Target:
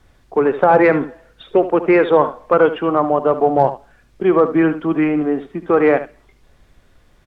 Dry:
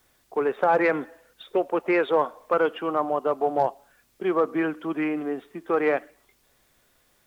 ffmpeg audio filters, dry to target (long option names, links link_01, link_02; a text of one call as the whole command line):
ffmpeg -i in.wav -filter_complex "[0:a]aemphasis=mode=reproduction:type=bsi,asplit=2[link_01][link_02];[link_02]aecho=0:1:73:0.237[link_03];[link_01][link_03]amix=inputs=2:normalize=0,volume=7.5dB" out.wav